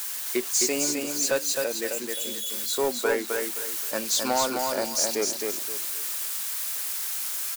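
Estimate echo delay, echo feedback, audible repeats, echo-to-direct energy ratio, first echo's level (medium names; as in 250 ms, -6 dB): 262 ms, 28%, 3, -3.5 dB, -4.0 dB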